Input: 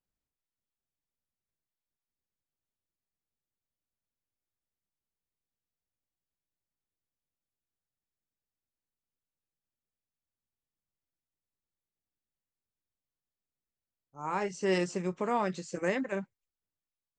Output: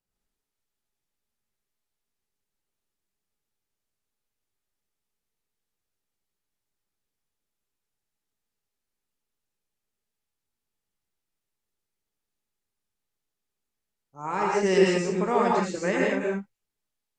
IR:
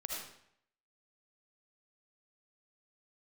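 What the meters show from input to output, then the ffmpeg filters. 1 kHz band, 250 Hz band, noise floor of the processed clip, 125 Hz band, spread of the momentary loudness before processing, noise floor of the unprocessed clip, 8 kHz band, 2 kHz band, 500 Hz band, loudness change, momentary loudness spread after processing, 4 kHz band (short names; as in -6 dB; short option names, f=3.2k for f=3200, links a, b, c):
+7.5 dB, +7.5 dB, -85 dBFS, +7.0 dB, 8 LU, under -85 dBFS, +7.5 dB, +7.5 dB, +9.0 dB, +8.0 dB, 11 LU, +8.0 dB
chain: -filter_complex "[1:a]atrim=start_sample=2205,atrim=end_sample=6174,asetrate=28665,aresample=44100[a];[0:a][a]afir=irnorm=-1:irlink=0,volume=4.5dB"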